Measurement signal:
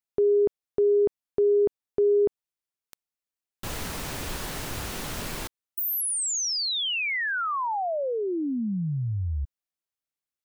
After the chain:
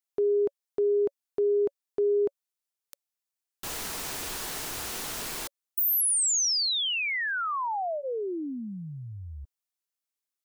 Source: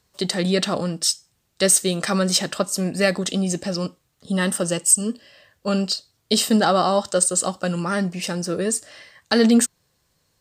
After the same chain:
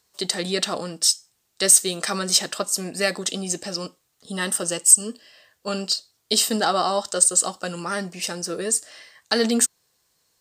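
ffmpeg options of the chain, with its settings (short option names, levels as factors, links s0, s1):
-af "bass=f=250:g=-10,treble=f=4000:g=5,bandreject=f=560:w=12,volume=0.794"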